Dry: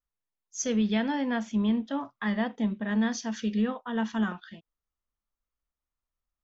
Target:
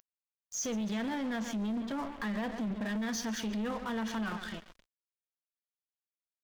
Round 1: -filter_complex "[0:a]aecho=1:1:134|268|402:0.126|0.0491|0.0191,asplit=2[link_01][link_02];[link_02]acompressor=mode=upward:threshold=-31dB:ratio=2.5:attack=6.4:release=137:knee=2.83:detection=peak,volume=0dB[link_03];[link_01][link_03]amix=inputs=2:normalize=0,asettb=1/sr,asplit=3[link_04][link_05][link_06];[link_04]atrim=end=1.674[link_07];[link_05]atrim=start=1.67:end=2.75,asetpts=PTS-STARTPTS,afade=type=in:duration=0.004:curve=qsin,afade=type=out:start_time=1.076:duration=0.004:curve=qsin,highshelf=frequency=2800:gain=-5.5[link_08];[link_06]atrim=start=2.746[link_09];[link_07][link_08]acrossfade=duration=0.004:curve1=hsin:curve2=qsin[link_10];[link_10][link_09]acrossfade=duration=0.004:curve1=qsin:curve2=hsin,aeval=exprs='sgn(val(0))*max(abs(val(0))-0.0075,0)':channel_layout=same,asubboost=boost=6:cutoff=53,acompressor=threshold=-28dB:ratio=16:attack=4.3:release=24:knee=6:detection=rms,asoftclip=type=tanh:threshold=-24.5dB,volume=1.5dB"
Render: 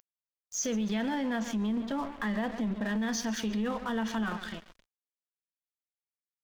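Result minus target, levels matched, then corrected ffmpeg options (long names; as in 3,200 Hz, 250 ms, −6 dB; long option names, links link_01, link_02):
soft clipping: distortion −10 dB
-filter_complex "[0:a]aecho=1:1:134|268|402:0.126|0.0491|0.0191,asplit=2[link_01][link_02];[link_02]acompressor=mode=upward:threshold=-31dB:ratio=2.5:attack=6.4:release=137:knee=2.83:detection=peak,volume=0dB[link_03];[link_01][link_03]amix=inputs=2:normalize=0,asettb=1/sr,asplit=3[link_04][link_05][link_06];[link_04]atrim=end=1.674[link_07];[link_05]atrim=start=1.67:end=2.75,asetpts=PTS-STARTPTS,afade=type=in:duration=0.004:curve=qsin,afade=type=out:start_time=1.076:duration=0.004:curve=qsin,highshelf=frequency=2800:gain=-5.5[link_08];[link_06]atrim=start=2.746[link_09];[link_07][link_08]acrossfade=duration=0.004:curve1=hsin:curve2=qsin[link_10];[link_10][link_09]acrossfade=duration=0.004:curve1=qsin:curve2=hsin,aeval=exprs='sgn(val(0))*max(abs(val(0))-0.0075,0)':channel_layout=same,asubboost=boost=6:cutoff=53,acompressor=threshold=-28dB:ratio=16:attack=4.3:release=24:knee=6:detection=rms,asoftclip=type=tanh:threshold=-32dB,volume=1.5dB"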